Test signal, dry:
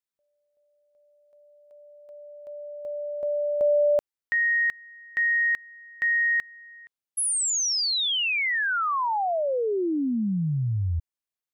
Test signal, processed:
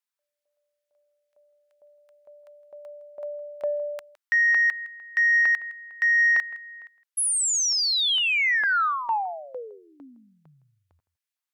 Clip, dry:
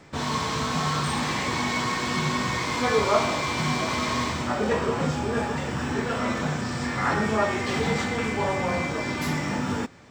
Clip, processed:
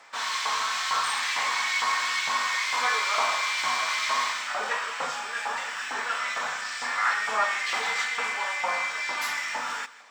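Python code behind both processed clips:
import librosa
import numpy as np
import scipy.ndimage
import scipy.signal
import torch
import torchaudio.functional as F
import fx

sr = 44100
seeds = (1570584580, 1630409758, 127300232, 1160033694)

y = fx.peak_eq(x, sr, hz=360.0, db=-8.0, octaves=0.24)
y = fx.filter_lfo_highpass(y, sr, shape='saw_up', hz=2.2, low_hz=860.0, high_hz=2000.0, q=1.2)
y = y + 10.0 ** (-18.5 / 20.0) * np.pad(y, (int(162 * sr / 1000.0), 0))[:len(y)]
y = fx.cheby_harmonics(y, sr, harmonics=(5,), levels_db=(-28,), full_scale_db=-10.0)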